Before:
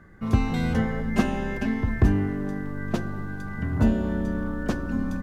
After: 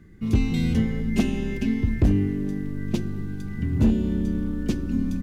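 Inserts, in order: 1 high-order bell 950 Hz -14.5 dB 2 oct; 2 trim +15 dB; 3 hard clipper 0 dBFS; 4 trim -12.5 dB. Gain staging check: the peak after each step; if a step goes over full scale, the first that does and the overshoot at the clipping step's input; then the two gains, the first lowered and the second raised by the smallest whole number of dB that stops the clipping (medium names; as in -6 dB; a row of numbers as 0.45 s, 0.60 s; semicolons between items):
-8.0 dBFS, +7.0 dBFS, 0.0 dBFS, -12.5 dBFS; step 2, 7.0 dB; step 2 +8 dB, step 4 -5.5 dB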